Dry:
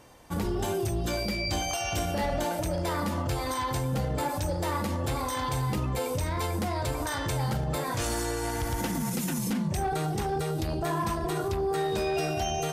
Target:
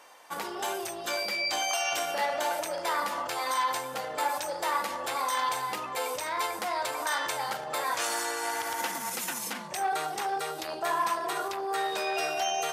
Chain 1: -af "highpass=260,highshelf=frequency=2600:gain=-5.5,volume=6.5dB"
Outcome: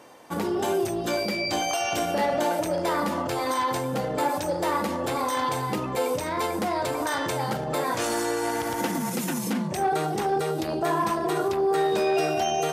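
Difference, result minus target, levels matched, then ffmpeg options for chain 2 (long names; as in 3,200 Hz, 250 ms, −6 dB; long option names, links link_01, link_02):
250 Hz band +11.5 dB
-af "highpass=850,highshelf=frequency=2600:gain=-5.5,volume=6.5dB"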